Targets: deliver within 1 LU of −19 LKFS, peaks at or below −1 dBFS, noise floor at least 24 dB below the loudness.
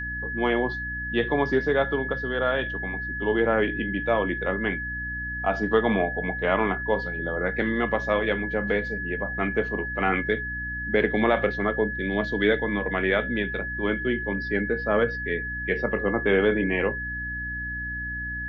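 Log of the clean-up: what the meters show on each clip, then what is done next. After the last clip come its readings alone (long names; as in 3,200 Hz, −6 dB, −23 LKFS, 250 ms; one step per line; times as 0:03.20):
mains hum 60 Hz; hum harmonics up to 300 Hz; level of the hum −34 dBFS; interfering tone 1,700 Hz; level of the tone −30 dBFS; integrated loudness −25.5 LKFS; sample peak −8.5 dBFS; target loudness −19.0 LKFS
→ hum removal 60 Hz, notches 5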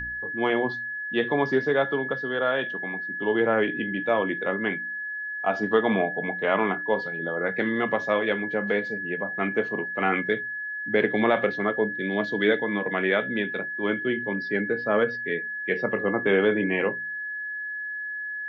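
mains hum none found; interfering tone 1,700 Hz; level of the tone −30 dBFS
→ notch filter 1,700 Hz, Q 30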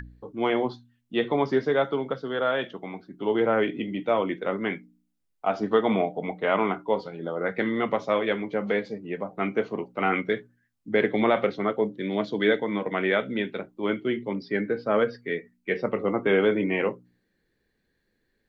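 interfering tone none found; integrated loudness −26.5 LKFS; sample peak −9.0 dBFS; target loudness −19.0 LKFS
→ level +7.5 dB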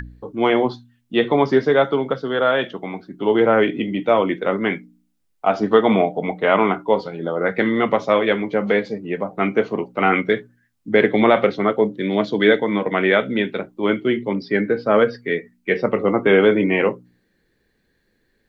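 integrated loudness −19.0 LKFS; sample peak −1.5 dBFS; background noise floor −67 dBFS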